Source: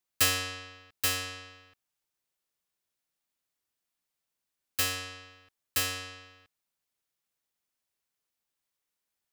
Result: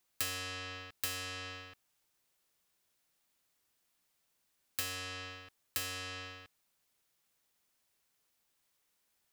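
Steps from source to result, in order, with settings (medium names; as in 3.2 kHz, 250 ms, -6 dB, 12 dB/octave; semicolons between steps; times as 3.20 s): compression 4:1, threshold -46 dBFS, peak gain reduction 21 dB; trim +7.5 dB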